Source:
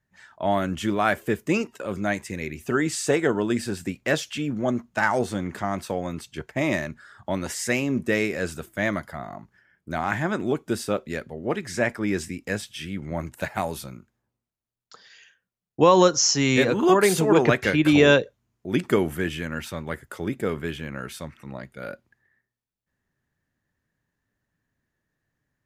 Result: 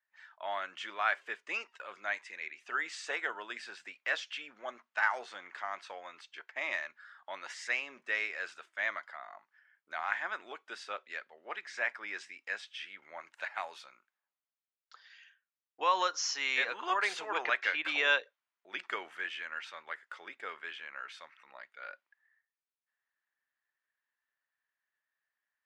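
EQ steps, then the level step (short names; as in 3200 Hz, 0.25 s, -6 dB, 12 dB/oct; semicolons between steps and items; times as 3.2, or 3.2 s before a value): HPF 1100 Hz 12 dB/oct; tape spacing loss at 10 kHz 44 dB; tilt +4.5 dB/oct; 0.0 dB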